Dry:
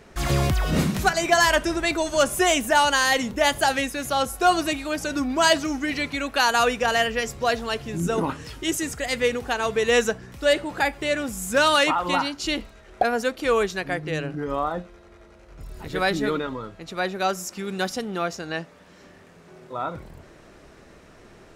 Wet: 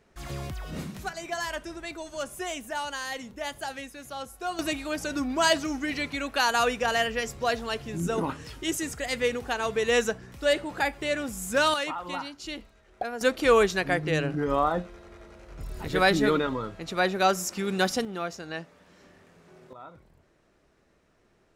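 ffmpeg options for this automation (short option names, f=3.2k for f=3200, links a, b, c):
-af "asetnsamples=n=441:p=0,asendcmd='4.59 volume volume -4dB;11.74 volume volume -11dB;13.21 volume volume 1.5dB;18.05 volume volume -6dB;19.73 volume volume -16.5dB',volume=-14dB"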